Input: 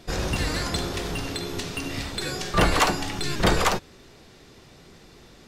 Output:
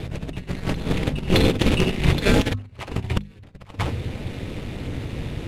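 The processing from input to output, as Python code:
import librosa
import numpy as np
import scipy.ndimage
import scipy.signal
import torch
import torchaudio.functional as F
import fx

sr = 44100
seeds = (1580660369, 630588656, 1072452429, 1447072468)

p1 = scipy.ndimage.median_filter(x, 9, mode='constant')
p2 = fx.tilt_eq(p1, sr, slope=-3.0)
p3 = p2 * np.sin(2.0 * np.pi * 100.0 * np.arange(len(p2)) / sr)
p4 = p3 + fx.echo_single(p3, sr, ms=141, db=-20.5, dry=0)
p5 = fx.over_compress(p4, sr, threshold_db=-28.0, ratio=-0.5)
p6 = fx.band_shelf(p5, sr, hz=5100.0, db=11.5, octaves=2.9)
p7 = fx.hum_notches(p6, sr, base_hz=50, count=5)
y = p7 * 10.0 ** (6.0 / 20.0)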